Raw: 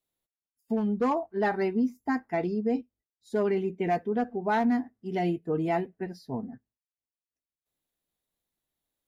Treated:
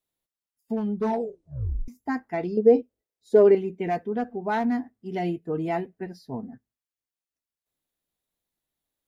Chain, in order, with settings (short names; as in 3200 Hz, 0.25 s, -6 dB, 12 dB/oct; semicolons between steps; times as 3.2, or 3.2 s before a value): 0.94 tape stop 0.94 s; 2.57–3.55 bell 480 Hz +14.5 dB 1.1 oct